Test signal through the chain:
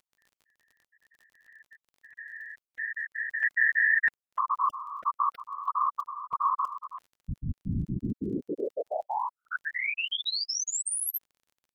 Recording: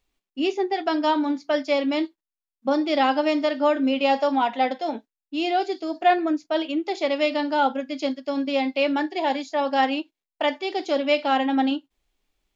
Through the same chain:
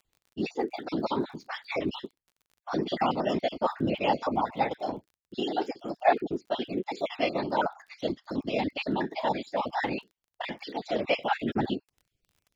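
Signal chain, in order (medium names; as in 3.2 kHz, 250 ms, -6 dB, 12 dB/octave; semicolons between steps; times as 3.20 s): random holes in the spectrogram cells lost 38%; whisper effect; crackle 30 per s -43 dBFS; trim -5 dB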